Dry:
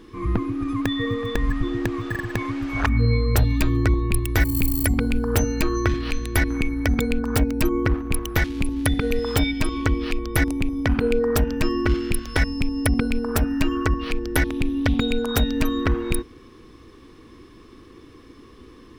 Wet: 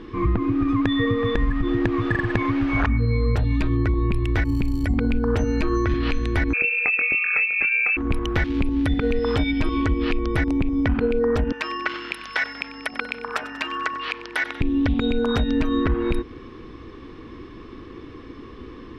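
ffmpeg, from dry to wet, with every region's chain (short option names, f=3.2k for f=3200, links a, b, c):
-filter_complex "[0:a]asettb=1/sr,asplit=3[a][b][c];[a]atrim=end=6.534[d];[b]atrim=start=6.53:end=7.97,asetpts=PTS-STARTPTS,afade=t=in:d=0.004:c=qsin,afade=t=out:st=1.436:d=0.004:c=qsin,equalizer=f=1.7k:t=o:w=0.41:g=-13,asplit=2[e][f];[f]adelay=23,volume=-7dB[g];[e][g]amix=inputs=2:normalize=0,atrim=end_sample=63504,lowpass=f=2.3k:t=q:w=0.5098,lowpass=f=2.3k:t=q:w=0.6013,lowpass=f=2.3k:t=q:w=0.9,lowpass=f=2.3k:t=q:w=2.563,afreqshift=-2700[h];[c]atrim=start=7.966[i];[d][h]acrossfade=d=0.004:c1=hsin:c2=qsin[j];[j][i]acrossfade=d=0.004:c1=qsin:c2=hsin,asettb=1/sr,asplit=3[k][l][m];[k]atrim=end=11.524[n];[l]atrim=start=11.52:end=14.61,asetpts=PTS-STARTPTS,afade=t=in:d=0.004:c=qsin,afade=t=out:st=3.086:d=0.004:c=qsin,highpass=970,aeval=exprs='val(0)+0.001*(sin(2*PI*50*n/s)+sin(2*PI*2*50*n/s)/2+sin(2*PI*3*50*n/s)/3+sin(2*PI*4*50*n/s)/4+sin(2*PI*5*50*n/s)/5)':c=same,asplit=7[o][p][q][r][s][t][u];[p]adelay=94,afreqshift=-34,volume=-18dB[v];[q]adelay=188,afreqshift=-68,volume=-21.7dB[w];[r]adelay=282,afreqshift=-102,volume=-25.5dB[x];[s]adelay=376,afreqshift=-136,volume=-29.2dB[y];[t]adelay=470,afreqshift=-170,volume=-33dB[z];[u]adelay=564,afreqshift=-204,volume=-36.7dB[aa];[o][v][w][x][y][z][aa]amix=inputs=7:normalize=0,atrim=end_sample=136269[ab];[m]atrim=start=14.606[ac];[n][ab]acrossfade=d=0.004:c1=hsin:c2=qsin[ad];[ad][ac]acrossfade=d=0.004:c1=qsin:c2=hsin,alimiter=limit=-13.5dB:level=0:latency=1:release=81,acompressor=threshold=-24dB:ratio=6,lowpass=3.3k,volume=7dB"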